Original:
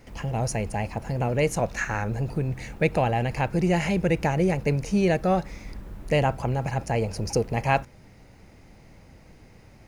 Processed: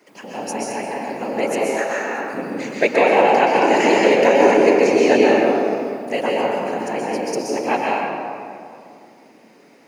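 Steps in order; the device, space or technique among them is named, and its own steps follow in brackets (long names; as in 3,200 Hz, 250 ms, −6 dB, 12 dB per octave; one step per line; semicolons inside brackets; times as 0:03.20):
0:02.60–0:05.21: gain on a spectral selection 350–8,000 Hz +7 dB
whispering ghost (random phases in short frames; high-pass filter 260 Hz 24 dB per octave; convolution reverb RT60 2.4 s, pre-delay 118 ms, DRR −4 dB)
0:01.75–0:02.34: high-pass filter 280 Hz 6 dB per octave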